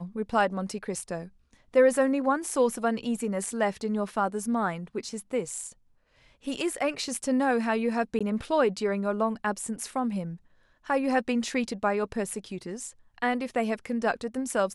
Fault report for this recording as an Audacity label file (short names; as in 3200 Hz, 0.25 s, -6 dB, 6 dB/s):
8.190000	8.210000	gap 16 ms